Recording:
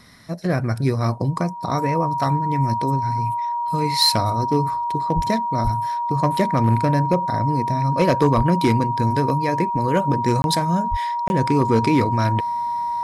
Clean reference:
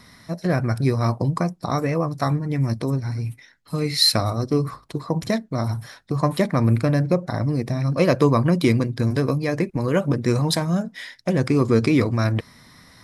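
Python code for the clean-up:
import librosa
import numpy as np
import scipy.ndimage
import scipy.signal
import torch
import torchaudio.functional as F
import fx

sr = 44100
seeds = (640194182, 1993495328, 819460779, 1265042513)

y = fx.fix_declip(x, sr, threshold_db=-9.0)
y = fx.notch(y, sr, hz=950.0, q=30.0)
y = fx.fix_deplosive(y, sr, at_s=(5.15, 5.63, 8.36, 10.9))
y = fx.fix_interpolate(y, sr, at_s=(10.42, 11.28), length_ms=21.0)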